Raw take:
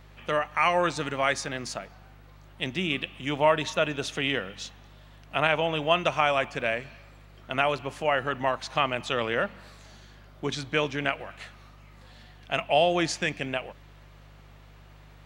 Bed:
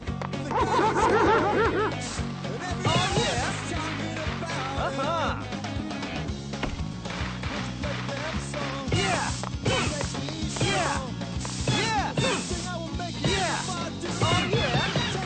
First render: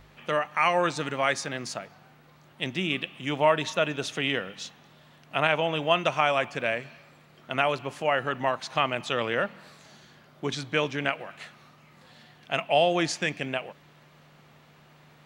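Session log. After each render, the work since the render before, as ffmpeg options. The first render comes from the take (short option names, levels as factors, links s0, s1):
-af "bandreject=f=50:t=h:w=4,bandreject=f=100:t=h:w=4"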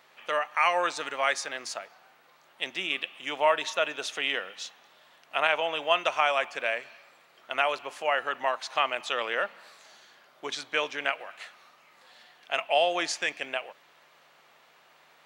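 -af "highpass=570"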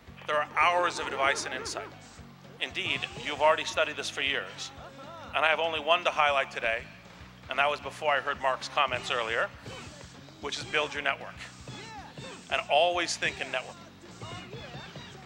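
-filter_complex "[1:a]volume=0.126[s0];[0:a][s0]amix=inputs=2:normalize=0"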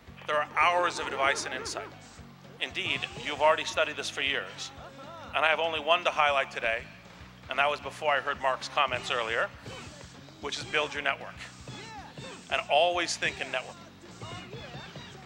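-af anull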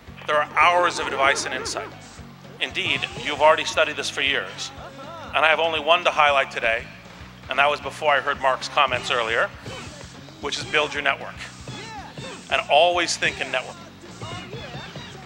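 -af "volume=2.37,alimiter=limit=0.794:level=0:latency=1"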